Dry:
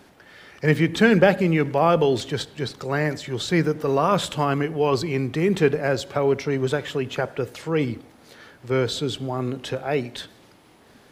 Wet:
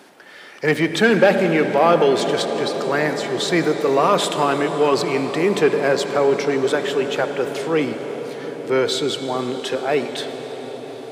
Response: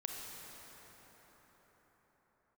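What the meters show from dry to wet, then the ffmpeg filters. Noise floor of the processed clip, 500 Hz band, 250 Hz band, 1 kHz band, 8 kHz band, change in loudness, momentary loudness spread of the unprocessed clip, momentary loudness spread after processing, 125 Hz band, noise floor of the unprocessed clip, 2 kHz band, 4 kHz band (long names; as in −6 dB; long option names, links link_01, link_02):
−41 dBFS, +5.0 dB, +1.5 dB, +5.0 dB, +6.5 dB, +3.5 dB, 11 LU, 13 LU, −4.5 dB, −53 dBFS, +4.5 dB, +5.5 dB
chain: -filter_complex "[0:a]equalizer=frequency=9000:width=5.1:gain=3,asplit=2[link_01][link_02];[1:a]atrim=start_sample=2205,asetrate=22932,aresample=44100[link_03];[link_02][link_03]afir=irnorm=-1:irlink=0,volume=-7dB[link_04];[link_01][link_04]amix=inputs=2:normalize=0,acontrast=45,highpass=270,volume=-3.5dB"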